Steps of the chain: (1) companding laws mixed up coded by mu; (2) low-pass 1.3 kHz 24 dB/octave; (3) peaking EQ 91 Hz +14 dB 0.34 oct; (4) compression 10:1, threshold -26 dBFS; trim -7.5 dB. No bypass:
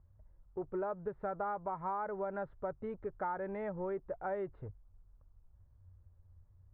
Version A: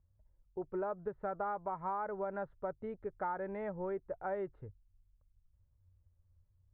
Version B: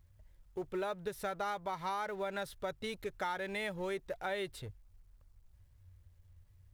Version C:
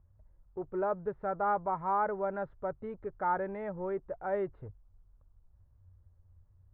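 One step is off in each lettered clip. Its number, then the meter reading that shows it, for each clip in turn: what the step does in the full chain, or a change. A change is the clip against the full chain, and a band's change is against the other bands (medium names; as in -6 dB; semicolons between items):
1, distortion -24 dB; 2, 2 kHz band +8.5 dB; 4, mean gain reduction 2.0 dB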